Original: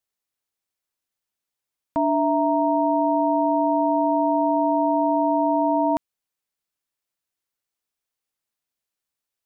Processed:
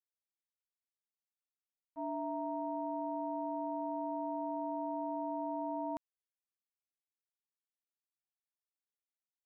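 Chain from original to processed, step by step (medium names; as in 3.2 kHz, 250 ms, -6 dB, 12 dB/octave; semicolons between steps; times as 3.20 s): expander -11 dBFS; trim -6 dB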